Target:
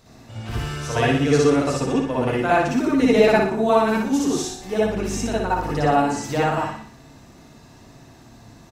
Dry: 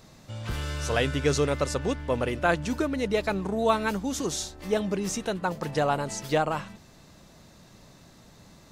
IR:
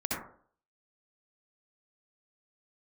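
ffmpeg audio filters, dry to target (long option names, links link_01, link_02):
-filter_complex "[0:a]asettb=1/sr,asplit=3[link_01][link_02][link_03];[link_01]atrim=end=2.964[link_04];[link_02]atrim=start=2.96:end=3.39,asetpts=PTS-STARTPTS,afade=type=in:duration=0.004:curve=qsin,afade=type=out:start_time=0.426:duration=0.004:curve=qsin,acontrast=30[link_05];[link_03]atrim=start=3.386[link_06];[link_04][link_05]acrossfade=duration=0.004:curve1=hsin:curve2=qsin[link_07];[link_07][link_06]acrossfade=duration=0.004:curve1=qsin:curve2=hsin,asettb=1/sr,asplit=3[link_08][link_09][link_10];[link_08]atrim=end=4.784[link_11];[link_09]atrim=start=4.78:end=5.84,asetpts=PTS-STARTPTS,afade=type=in:duration=0.004:curve=qsin,afade=type=out:start_time=1.056:duration=0.004:curve=qsin,aeval=exprs='val(0)+0.00631*(sin(2*PI*50*n/s)+sin(2*PI*2*50*n/s)/2+sin(2*PI*3*50*n/s)/3+sin(2*PI*4*50*n/s)/4+sin(2*PI*5*50*n/s)/5)':channel_layout=same[link_12];[link_10]atrim=start=5.836[link_13];[link_11][link_12]acrossfade=duration=0.004:curve1=hsin:curve2=qsin[link_14];[link_14][link_13]acrossfade=duration=0.004:curve1=qsin:curve2=hsin,aecho=1:1:60|120|180|240|300|360:0.562|0.253|0.114|0.0512|0.0231|0.0104[link_15];[1:a]atrim=start_sample=2205,atrim=end_sample=3969,asetrate=48510,aresample=44100[link_16];[link_15][link_16]afir=irnorm=-1:irlink=0"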